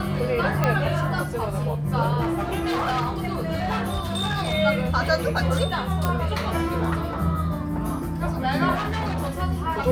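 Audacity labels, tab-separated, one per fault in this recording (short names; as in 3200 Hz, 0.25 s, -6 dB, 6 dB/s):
0.640000	0.640000	pop -8 dBFS
2.200000	4.540000	clipped -20.5 dBFS
6.050000	6.050000	pop -10 dBFS
8.740000	9.430000	clipped -23 dBFS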